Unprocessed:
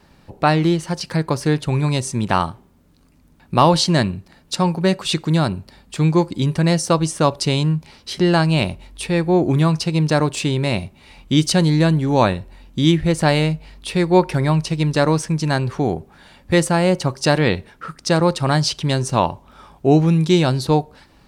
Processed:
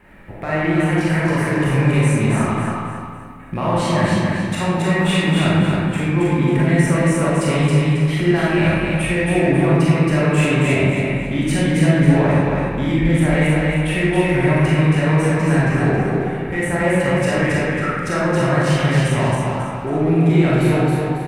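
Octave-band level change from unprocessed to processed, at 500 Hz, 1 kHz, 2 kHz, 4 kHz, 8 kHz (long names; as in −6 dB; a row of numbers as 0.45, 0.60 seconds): +0.5, −1.5, +5.5, −4.5, −3.0 decibels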